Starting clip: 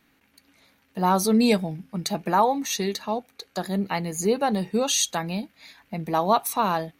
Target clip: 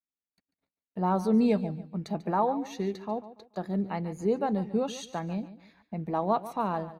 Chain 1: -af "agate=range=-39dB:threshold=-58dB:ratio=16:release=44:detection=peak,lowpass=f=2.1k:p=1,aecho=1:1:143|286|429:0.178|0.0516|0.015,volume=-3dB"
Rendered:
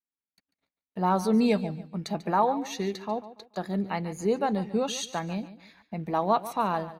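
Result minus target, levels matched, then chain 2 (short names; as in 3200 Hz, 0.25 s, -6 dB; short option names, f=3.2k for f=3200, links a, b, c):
2000 Hz band +4.5 dB
-af "agate=range=-39dB:threshold=-58dB:ratio=16:release=44:detection=peak,lowpass=f=730:p=1,aecho=1:1:143|286|429:0.178|0.0516|0.015,volume=-3dB"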